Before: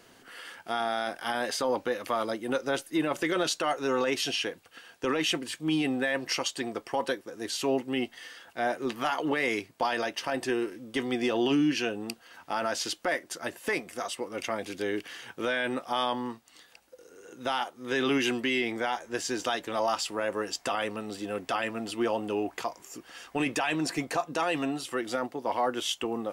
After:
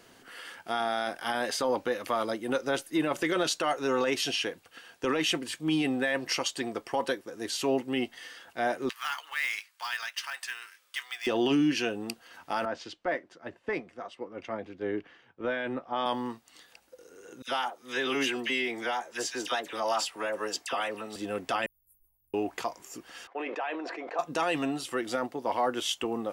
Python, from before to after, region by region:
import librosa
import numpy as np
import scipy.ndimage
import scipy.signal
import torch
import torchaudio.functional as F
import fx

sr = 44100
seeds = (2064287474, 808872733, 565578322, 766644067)

y = fx.chain(x, sr, fx.highpass(hz=1200.0, slope=24),
    fx.quant_float(bits=2), at=(8.89, 11.27))
y = fx.chain(y, sr, fx.spacing_loss(db_at_10k=29),
    fx.band_widen(depth_pct=100), at=(12.65, 16.06))
y = fx.chain(y, sr, fx.low_shelf(hz=240.0, db=-12.0),
    fx.dispersion(late='lows', ms=59.0, hz=1500.0), at=(17.42, 21.16))
y = fx.chain(y, sr, fx.cheby2_bandstop(low_hz=210.0, high_hz=5500.0, order=4, stop_db=60),
    fx.fixed_phaser(hz=460.0, stages=6),
    fx.sustainer(db_per_s=140.0), at=(21.66, 22.34))
y = fx.chain(y, sr, fx.highpass(hz=420.0, slope=24),
    fx.spacing_loss(db_at_10k=43),
    fx.sustainer(db_per_s=24.0), at=(23.27, 24.19))